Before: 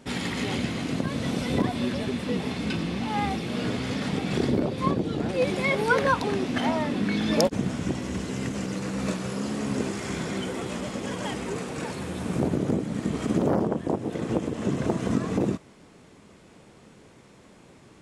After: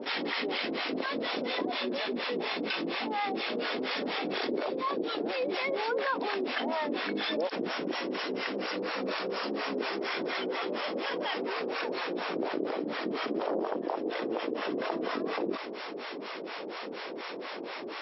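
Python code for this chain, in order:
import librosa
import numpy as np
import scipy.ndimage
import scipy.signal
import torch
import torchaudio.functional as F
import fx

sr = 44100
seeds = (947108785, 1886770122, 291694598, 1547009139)

y = scipy.signal.sosfilt(scipy.signal.butter(4, 330.0, 'highpass', fs=sr, output='sos'), x)
y = fx.harmonic_tremolo(y, sr, hz=4.2, depth_pct=100, crossover_hz=610.0)
y = fx.brickwall_lowpass(y, sr, high_hz=5600.0)
y = fx.env_flatten(y, sr, amount_pct=70)
y = y * librosa.db_to_amplitude(-5.0)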